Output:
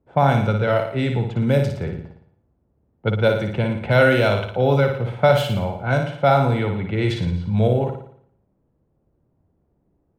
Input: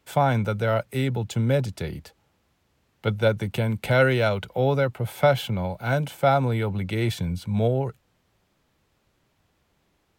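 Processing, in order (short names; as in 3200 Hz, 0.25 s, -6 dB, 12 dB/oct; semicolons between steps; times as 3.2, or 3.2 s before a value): low-pass opened by the level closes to 490 Hz, open at -17 dBFS; flutter echo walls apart 9.8 m, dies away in 0.61 s; gain +3 dB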